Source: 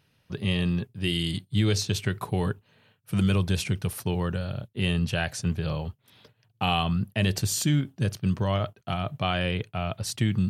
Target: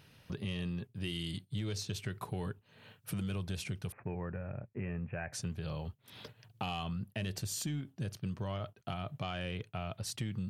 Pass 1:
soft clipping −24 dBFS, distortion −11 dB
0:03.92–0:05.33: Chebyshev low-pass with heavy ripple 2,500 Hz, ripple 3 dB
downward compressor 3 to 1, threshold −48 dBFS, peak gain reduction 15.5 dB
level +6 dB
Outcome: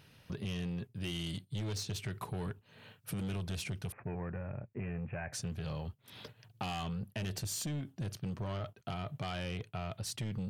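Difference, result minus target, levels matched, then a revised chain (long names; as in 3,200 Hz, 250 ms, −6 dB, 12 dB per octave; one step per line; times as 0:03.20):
soft clipping: distortion +13 dB
soft clipping −14 dBFS, distortion −24 dB
0:03.92–0:05.33: Chebyshev low-pass with heavy ripple 2,500 Hz, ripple 3 dB
downward compressor 3 to 1, threshold −48 dBFS, peak gain reduction 20 dB
level +6 dB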